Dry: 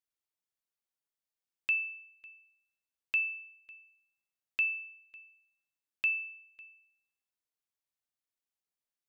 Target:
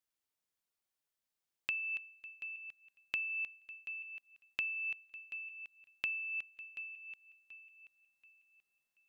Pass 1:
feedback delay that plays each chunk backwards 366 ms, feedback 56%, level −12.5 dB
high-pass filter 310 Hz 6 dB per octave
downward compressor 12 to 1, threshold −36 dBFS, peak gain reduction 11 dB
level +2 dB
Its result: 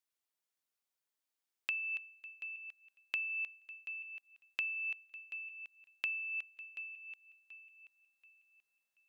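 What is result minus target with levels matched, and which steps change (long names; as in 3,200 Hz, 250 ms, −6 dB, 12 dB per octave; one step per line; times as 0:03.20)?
250 Hz band −4.5 dB
remove: high-pass filter 310 Hz 6 dB per octave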